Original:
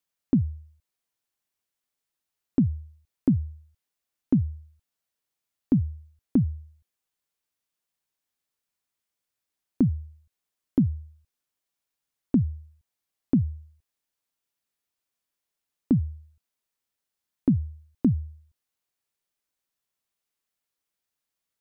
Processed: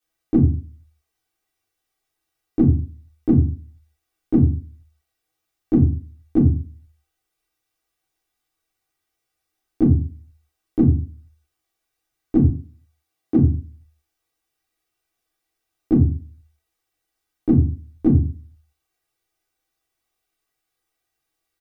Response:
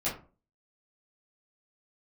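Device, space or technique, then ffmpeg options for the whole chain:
microphone above a desk: -filter_complex "[0:a]aecho=1:1:2.6:0.74[a];[1:a]atrim=start_sample=2205[b];[a][b]afir=irnorm=-1:irlink=0,asettb=1/sr,asplit=3[c][d][e];[c]atrim=end=12.504[f];[d]atrim=start=12.5:end=13.39,asetpts=PTS-STARTPTS,afade=t=in:d=0.004:c=qsin,afade=t=out:st=0.886:d=0.004:c=qsin,highpass=110[g];[e]atrim=start=13.386[h];[f][g]acrossfade=d=0.004:c1=hsin:c2=qsin[i];[i][h]acrossfade=d=0.004:c1=qsin:c2=hsin"

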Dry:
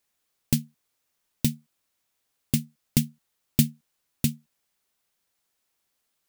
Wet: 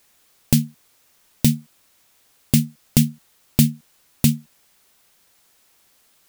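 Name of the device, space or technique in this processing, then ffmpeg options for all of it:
loud club master: -af "acompressor=threshold=-23dB:ratio=2.5,asoftclip=type=hard:threshold=-10.5dB,alimiter=level_in=18.5dB:limit=-1dB:release=50:level=0:latency=1,volume=-1dB"

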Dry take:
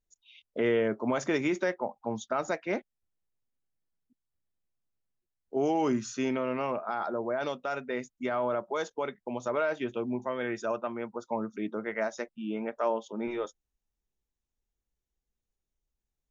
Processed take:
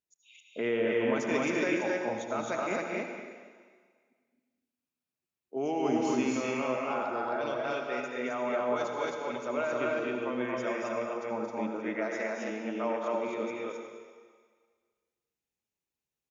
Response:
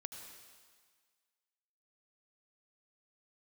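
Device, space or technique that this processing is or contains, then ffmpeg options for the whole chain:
stadium PA: -filter_complex "[0:a]highpass=130,equalizer=f=2.5k:t=o:w=0.32:g=6.5,aecho=1:1:224.5|265.3:0.562|0.891[a];[1:a]atrim=start_sample=2205[b];[a][b]afir=irnorm=-1:irlink=0"

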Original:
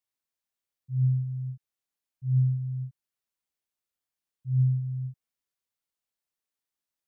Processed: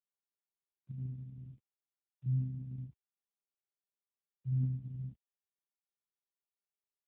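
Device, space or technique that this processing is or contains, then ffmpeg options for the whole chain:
mobile call with aggressive noise cancelling: -filter_complex "[0:a]asettb=1/sr,asplit=3[a][b][c];[a]atrim=end=0.914[d];[b]atrim=start=0.91:end=2.26,asetpts=PTS-STARTPTS,afade=t=in:d=0.004:c=qsin,afade=t=out:st=1.346:d=0.004:c=qsin,aemphasis=mode=production:type=bsi[e];[c]atrim=start=2.256[f];[d][e]acrossfade=d=0.004:c1=hsin:c2=qsin[g];[g][f]acrossfade=d=0.004:c1=qsin:c2=hsin,highpass=120,afftdn=nr=25:nf=-42,volume=2.5dB" -ar 8000 -c:a libopencore_amrnb -b:a 7950

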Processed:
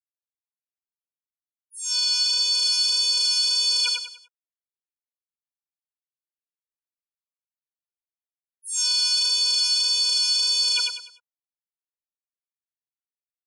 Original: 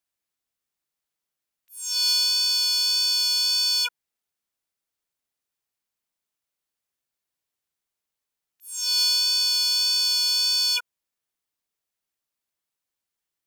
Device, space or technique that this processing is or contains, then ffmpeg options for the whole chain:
low-bitrate web radio: -filter_complex "[0:a]asettb=1/sr,asplit=3[a][b][c];[a]atrim=end=1.914[d];[b]atrim=start=1.91:end=2.54,asetpts=PTS-STARTPTS,afade=t=in:d=0.004:c=qsin,afade=t=out:st=0.626:d=0.004:c=qsin,lowpass=f=9.2k:w=0.5412,lowpass=f=9.2k:w=1.3066[e];[c]atrim=start=2.536[f];[d][e]acrossfade=d=0.004:c1=hsin:c2=qsin[g];[g][f]acrossfade=d=0.004:c1=qsin:c2=hsin,afftfilt=real='re*gte(hypot(re,im),0.00794)':imag='im*gte(hypot(re,im),0.00794)':win_size=1024:overlap=0.75,adynamicequalizer=threshold=0.00708:dfrequency=1400:dqfactor=1.1:tfrequency=1400:tqfactor=1.1:attack=5:release=100:ratio=0.375:range=3:mode=cutabove:tftype=bell,aecho=1:1:99|198|297|396:0.422|0.143|0.0487|0.0166,dynaudnorm=f=930:g=5:m=8dB,alimiter=limit=-13.5dB:level=0:latency=1:release=15" -ar 32000 -c:a libmp3lame -b:a 48k

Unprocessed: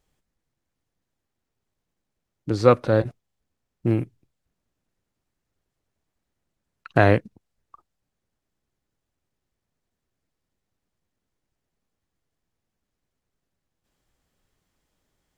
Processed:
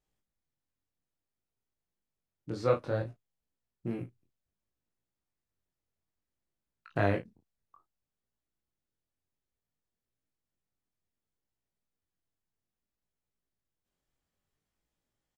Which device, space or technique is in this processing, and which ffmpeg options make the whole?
double-tracked vocal: -filter_complex "[0:a]asplit=2[a][b];[b]adelay=34,volume=-10.5dB[c];[a][c]amix=inputs=2:normalize=0,flanger=delay=17.5:depth=5.8:speed=0.6,volume=-9dB"

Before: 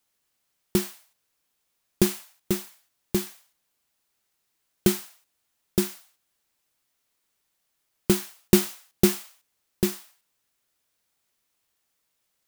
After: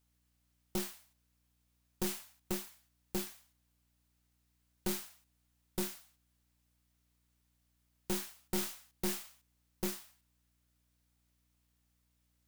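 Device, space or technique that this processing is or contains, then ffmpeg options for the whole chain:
valve amplifier with mains hum: -af "aeval=exprs='(tanh(25.1*val(0)+0.55)-tanh(0.55))/25.1':c=same,aeval=exprs='val(0)+0.000224*(sin(2*PI*60*n/s)+sin(2*PI*2*60*n/s)/2+sin(2*PI*3*60*n/s)/3+sin(2*PI*4*60*n/s)/4+sin(2*PI*5*60*n/s)/5)':c=same,volume=-3dB"

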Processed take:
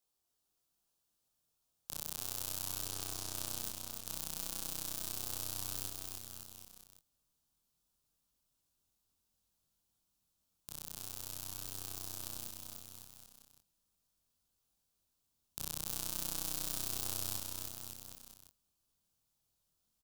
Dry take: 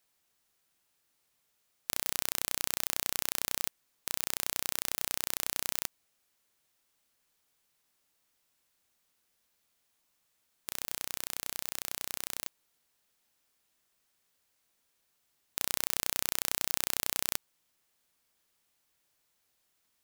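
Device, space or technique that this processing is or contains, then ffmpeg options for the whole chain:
double-tracked vocal: -filter_complex "[0:a]asubboost=boost=3:cutoff=220,asettb=1/sr,asplit=3[a][b][c];[a]atrim=end=2.854[d];[b]atrim=start=2.85:end=3.33,asetpts=PTS-STARTPTS,afade=t=in:d=0.004:c=qsin,afade=t=out:st=0.476:d=0.004:c=qsin,lowpass=10k[e];[c]atrim=start=3.326[f];[d][e]acrossfade=d=0.004:c1=hsin:c2=qsin[g];[g][f]acrossfade=d=0.004:c1=qsin:c2=hsin,asplit=2[h][i];[i]adelay=20,volume=-10.5dB[j];[h][j]amix=inputs=2:normalize=0,flanger=delay=22.5:depth=3.9:speed=0.34,equalizer=f=2k:t=o:w=0.81:g=-13,aecho=1:1:300|555|771.8|956|1113:0.631|0.398|0.251|0.158|0.1,volume=-4.5dB"

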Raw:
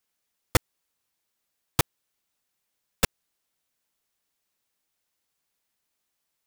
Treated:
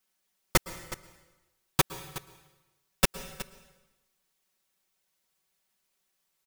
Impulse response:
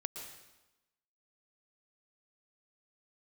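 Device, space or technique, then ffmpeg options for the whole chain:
saturated reverb return: -filter_complex "[0:a]asplit=2[a][b];[1:a]atrim=start_sample=2205[c];[b][c]afir=irnorm=-1:irlink=0,asoftclip=type=tanh:threshold=-27.5dB,volume=-6dB[d];[a][d]amix=inputs=2:normalize=0,aecho=1:1:5.3:0.76,aecho=1:1:368:0.168,volume=-3dB"

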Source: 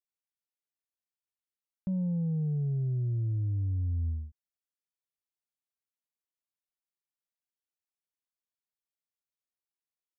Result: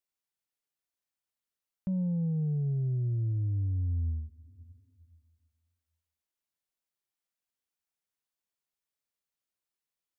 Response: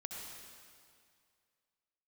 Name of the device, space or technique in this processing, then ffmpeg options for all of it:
ducked reverb: -filter_complex "[0:a]asplit=3[a][b][c];[1:a]atrim=start_sample=2205[d];[b][d]afir=irnorm=-1:irlink=0[e];[c]apad=whole_len=449220[f];[e][f]sidechaincompress=threshold=-53dB:ratio=8:attack=16:release=302,volume=-5dB[g];[a][g]amix=inputs=2:normalize=0"

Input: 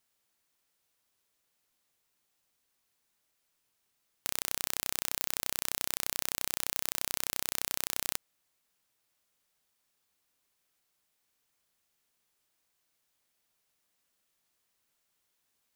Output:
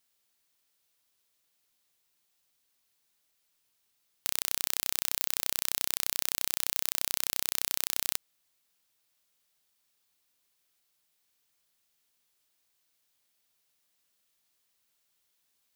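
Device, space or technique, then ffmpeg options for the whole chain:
presence and air boost: -af "equalizer=f=3.9k:t=o:w=1.5:g=4.5,highshelf=f=9.4k:g=6.5,volume=-2dB"

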